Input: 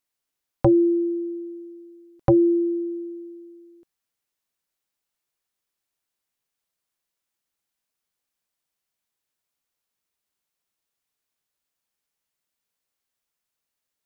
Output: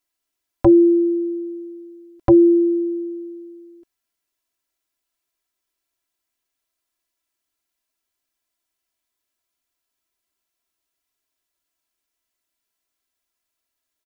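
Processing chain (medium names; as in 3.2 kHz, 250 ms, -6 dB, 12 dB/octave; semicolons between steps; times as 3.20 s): comb 3 ms, depth 94%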